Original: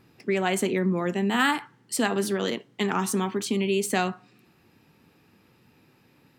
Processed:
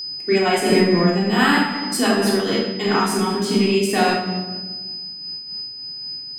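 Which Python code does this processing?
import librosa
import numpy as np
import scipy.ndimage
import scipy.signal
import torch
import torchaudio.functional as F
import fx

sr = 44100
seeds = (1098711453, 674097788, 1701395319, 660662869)

p1 = np.sign(x) * np.maximum(np.abs(x) - 10.0 ** (-43.0 / 20.0), 0.0)
p2 = x + (p1 * librosa.db_to_amplitude(-4.0))
p3 = fx.room_shoebox(p2, sr, seeds[0], volume_m3=920.0, walls='mixed', distance_m=3.4)
p4 = p3 + 10.0 ** (-25.0 / 20.0) * np.sin(2.0 * np.pi * 5000.0 * np.arange(len(p3)) / sr)
y = fx.am_noise(p4, sr, seeds[1], hz=5.7, depth_pct=60)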